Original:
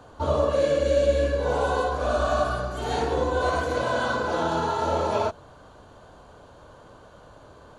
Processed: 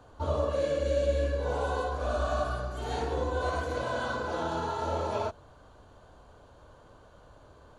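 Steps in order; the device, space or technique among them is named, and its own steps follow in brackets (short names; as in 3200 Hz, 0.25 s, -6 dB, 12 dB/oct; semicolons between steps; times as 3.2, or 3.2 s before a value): low shelf boost with a cut just above (low shelf 95 Hz +7.5 dB; bell 170 Hz -2.5 dB); gain -7 dB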